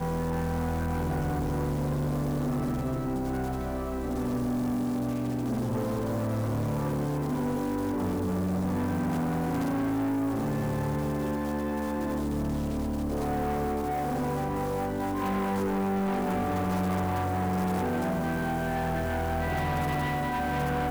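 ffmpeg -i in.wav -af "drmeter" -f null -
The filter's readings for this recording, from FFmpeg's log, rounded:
Channel 1: DR: -0.7
Overall DR: -0.7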